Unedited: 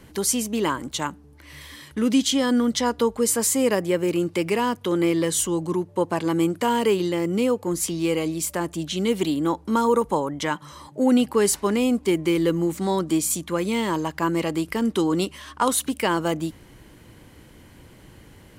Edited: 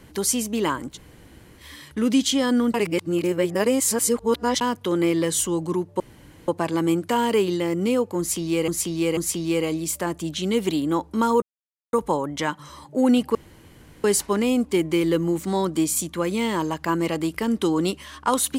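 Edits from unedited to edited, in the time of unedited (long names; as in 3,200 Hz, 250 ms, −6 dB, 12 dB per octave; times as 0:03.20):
0:00.93–0:01.62: fill with room tone, crossfade 0.10 s
0:02.74–0:04.61: reverse
0:06.00: splice in room tone 0.48 s
0:07.71–0:08.20: repeat, 3 plays
0:09.96: splice in silence 0.51 s
0:11.38: splice in room tone 0.69 s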